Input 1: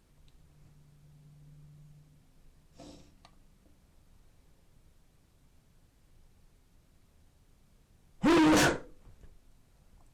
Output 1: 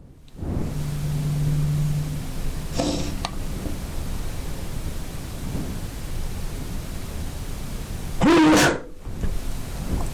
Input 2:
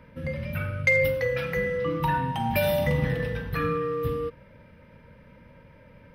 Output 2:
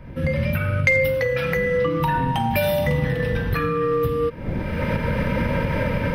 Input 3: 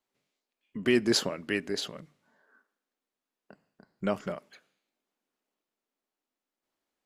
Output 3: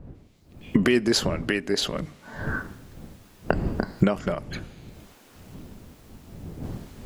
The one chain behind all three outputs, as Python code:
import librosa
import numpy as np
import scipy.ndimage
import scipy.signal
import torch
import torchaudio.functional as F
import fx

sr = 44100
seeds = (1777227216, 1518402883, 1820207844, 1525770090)

y = fx.recorder_agc(x, sr, target_db=-16.5, rise_db_per_s=37.0, max_gain_db=30)
y = fx.dmg_wind(y, sr, seeds[0], corner_hz=200.0, level_db=-40.0)
y = y * librosa.db_to_amplitude(3.0)